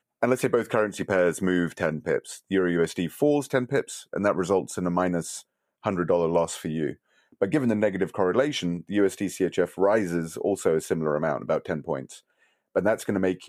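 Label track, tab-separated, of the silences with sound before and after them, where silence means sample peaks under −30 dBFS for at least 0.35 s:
5.380000	5.850000	silence
6.910000	7.420000	silence
12.030000	12.760000	silence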